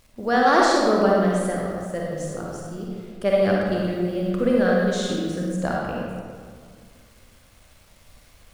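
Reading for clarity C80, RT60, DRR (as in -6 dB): 0.5 dB, 2.0 s, -3.0 dB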